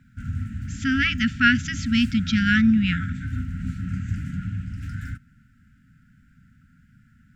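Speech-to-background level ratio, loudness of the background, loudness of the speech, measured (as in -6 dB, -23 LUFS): 10.5 dB, -31.5 LUFS, -21.0 LUFS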